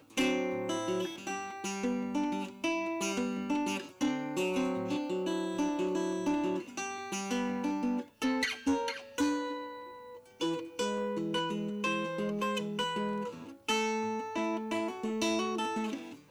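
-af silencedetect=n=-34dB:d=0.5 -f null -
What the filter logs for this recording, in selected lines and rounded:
silence_start: 9.65
silence_end: 10.41 | silence_duration: 0.76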